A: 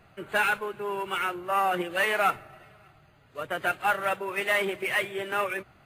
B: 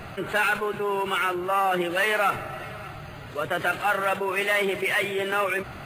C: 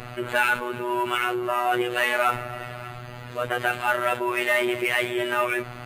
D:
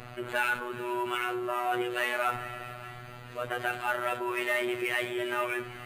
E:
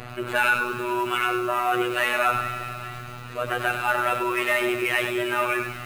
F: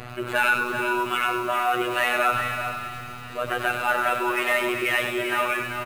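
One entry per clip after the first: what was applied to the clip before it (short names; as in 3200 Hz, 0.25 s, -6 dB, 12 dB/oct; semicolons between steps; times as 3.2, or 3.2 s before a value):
fast leveller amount 50%
robotiser 122 Hz; gain +3 dB
split-band echo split 1700 Hz, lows 87 ms, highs 0.427 s, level -13.5 dB; gain -7 dB
lo-fi delay 99 ms, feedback 35%, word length 8-bit, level -6.5 dB; gain +6.5 dB
echo 0.389 s -8 dB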